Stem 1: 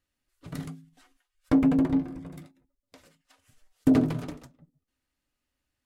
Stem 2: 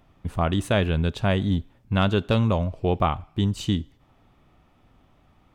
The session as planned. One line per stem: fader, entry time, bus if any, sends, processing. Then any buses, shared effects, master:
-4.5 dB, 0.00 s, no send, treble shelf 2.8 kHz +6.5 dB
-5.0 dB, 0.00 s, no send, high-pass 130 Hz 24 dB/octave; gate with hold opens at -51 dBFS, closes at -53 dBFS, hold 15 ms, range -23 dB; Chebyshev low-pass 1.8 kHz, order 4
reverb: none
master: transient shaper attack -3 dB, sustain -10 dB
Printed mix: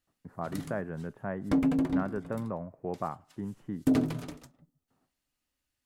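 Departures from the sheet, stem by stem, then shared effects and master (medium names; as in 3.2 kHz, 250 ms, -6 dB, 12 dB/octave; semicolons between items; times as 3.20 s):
stem 2 -5.0 dB -> -11.0 dB; master: missing transient shaper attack -3 dB, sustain -10 dB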